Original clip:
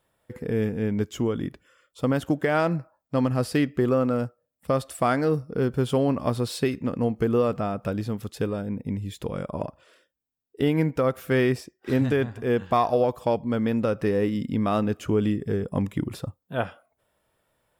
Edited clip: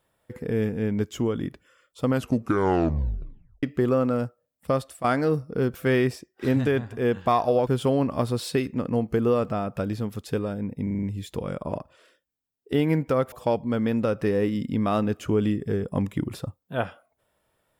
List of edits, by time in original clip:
2.07 s: tape stop 1.56 s
4.74–5.04 s: fade out, to -13.5 dB
8.91 s: stutter 0.04 s, 6 plays
11.20–13.12 s: move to 5.75 s

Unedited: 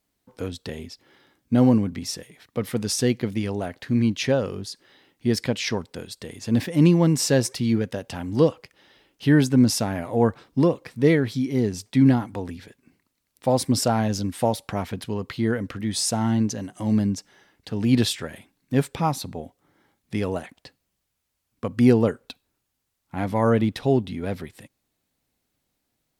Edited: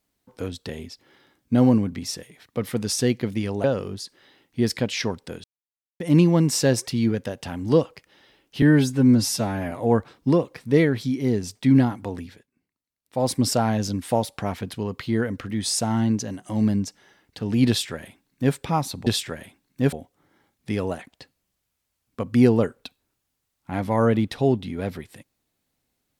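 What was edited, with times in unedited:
3.64–4.31 s: delete
6.11–6.67 s: mute
9.29–10.02 s: stretch 1.5×
12.54–13.60 s: dip -15.5 dB, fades 0.25 s
17.99–18.85 s: copy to 19.37 s

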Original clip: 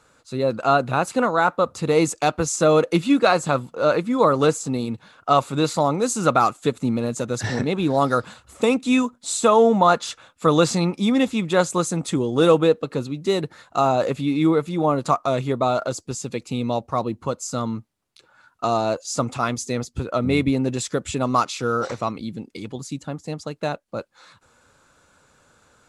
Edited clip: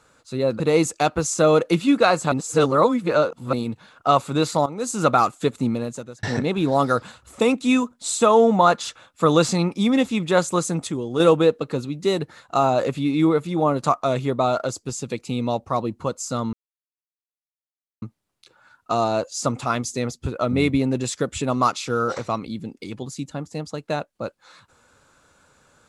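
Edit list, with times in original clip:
0.60–1.82 s: delete
3.54–4.75 s: reverse
5.88–6.25 s: fade in, from -15 dB
6.89–7.45 s: fade out linear
12.09–12.42 s: gain -5 dB
17.75 s: insert silence 1.49 s

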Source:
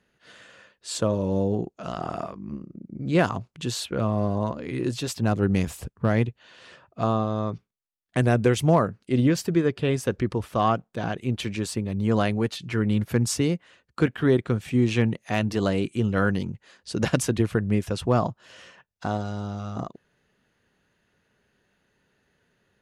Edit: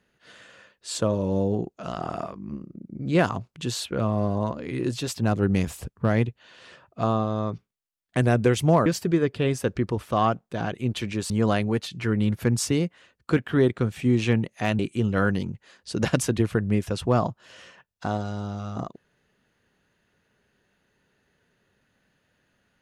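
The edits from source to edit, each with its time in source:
8.86–9.29 s: delete
11.73–11.99 s: delete
15.48–15.79 s: delete

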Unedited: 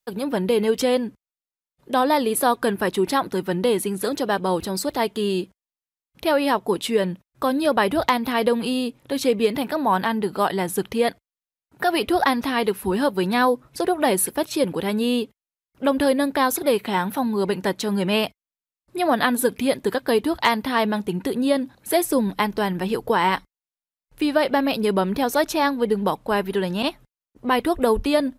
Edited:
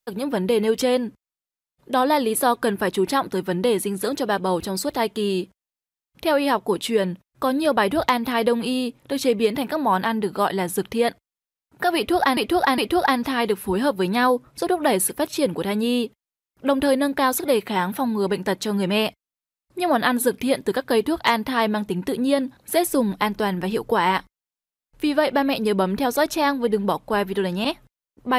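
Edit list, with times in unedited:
11.96–12.37 s: loop, 3 plays

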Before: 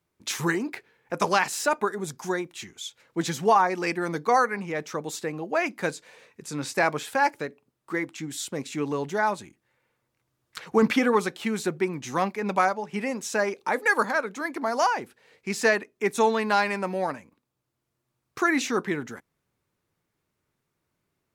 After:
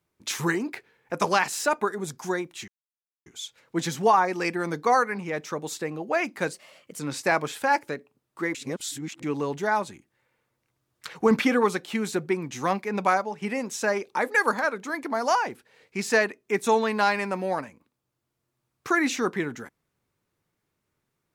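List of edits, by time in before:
2.68 s: insert silence 0.58 s
5.95–6.51 s: speed 120%
8.06–8.74 s: reverse

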